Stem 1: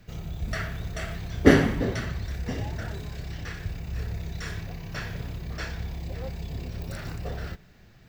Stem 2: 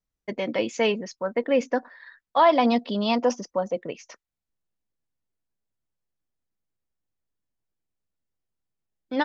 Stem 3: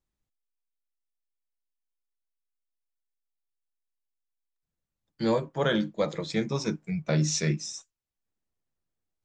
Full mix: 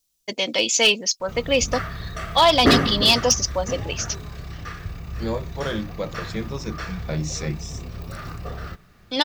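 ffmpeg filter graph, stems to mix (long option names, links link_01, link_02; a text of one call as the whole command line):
ffmpeg -i stem1.wav -i stem2.wav -i stem3.wav -filter_complex "[0:a]equalizer=frequency=1200:width_type=o:width=0.21:gain=15,bandreject=frequency=7400:width=23,adelay=1200,volume=0.5dB[link_01];[1:a]lowshelf=frequency=330:gain=-6.5,aexciter=amount=4.3:drive=8.4:freq=2700,volume=2.5dB[link_02];[2:a]volume=-2dB[link_03];[link_01][link_02][link_03]amix=inputs=3:normalize=0,asoftclip=type=hard:threshold=-8.5dB" out.wav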